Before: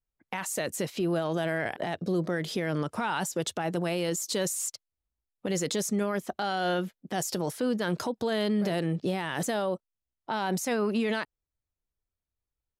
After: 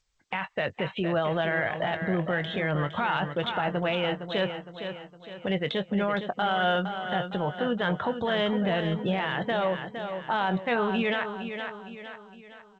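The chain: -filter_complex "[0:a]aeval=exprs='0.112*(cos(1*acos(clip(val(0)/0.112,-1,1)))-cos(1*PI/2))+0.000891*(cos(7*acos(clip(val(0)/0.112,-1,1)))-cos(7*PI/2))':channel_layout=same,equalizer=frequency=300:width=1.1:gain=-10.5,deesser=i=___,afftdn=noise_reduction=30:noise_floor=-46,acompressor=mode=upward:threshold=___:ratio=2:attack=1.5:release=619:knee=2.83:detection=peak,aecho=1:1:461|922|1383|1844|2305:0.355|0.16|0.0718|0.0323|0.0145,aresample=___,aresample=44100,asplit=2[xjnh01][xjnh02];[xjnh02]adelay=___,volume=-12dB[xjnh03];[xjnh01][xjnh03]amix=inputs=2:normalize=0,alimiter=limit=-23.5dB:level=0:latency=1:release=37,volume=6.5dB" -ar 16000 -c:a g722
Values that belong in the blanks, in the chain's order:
0.25, -41dB, 8000, 21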